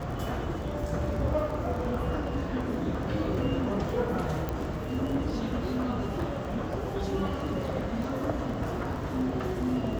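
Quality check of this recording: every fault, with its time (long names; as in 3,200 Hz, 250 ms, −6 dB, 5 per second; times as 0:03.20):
surface crackle 20 per second −35 dBFS
0:04.49: click −18 dBFS
0:08.04: drop-out 2.2 ms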